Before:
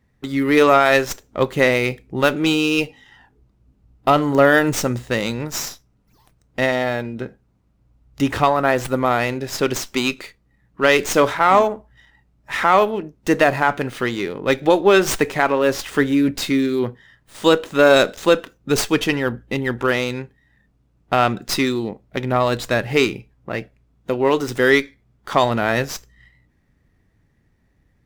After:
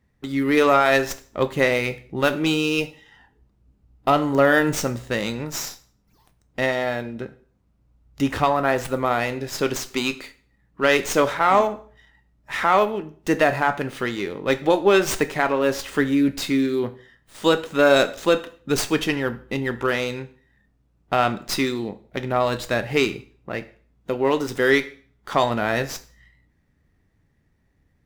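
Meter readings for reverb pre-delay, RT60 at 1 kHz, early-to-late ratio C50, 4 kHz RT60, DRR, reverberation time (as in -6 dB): 5 ms, 0.45 s, 16.5 dB, 0.45 s, 11.0 dB, 0.45 s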